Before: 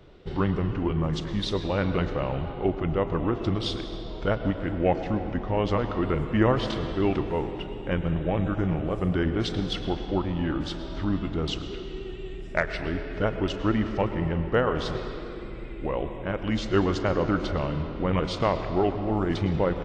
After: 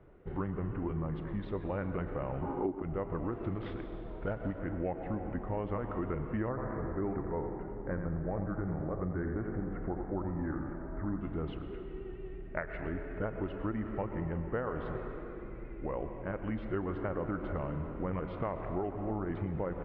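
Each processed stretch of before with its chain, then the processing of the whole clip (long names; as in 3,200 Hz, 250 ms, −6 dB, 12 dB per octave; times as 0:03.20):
0:02.42–0:02.82: bass and treble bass −3 dB, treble +2 dB + hollow resonant body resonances 290/900 Hz, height 14 dB, ringing for 20 ms
0:03.32–0:04.59: variable-slope delta modulation 32 kbit/s + high-shelf EQ 4,900 Hz +6.5 dB + notch filter 1,100 Hz, Q 23
0:06.49–0:11.21: Butterworth low-pass 2,000 Hz 48 dB per octave + single-tap delay 86 ms −7.5 dB
whole clip: downward compressor, threshold −24 dBFS; low-pass filter 2,000 Hz 24 dB per octave; level −6.5 dB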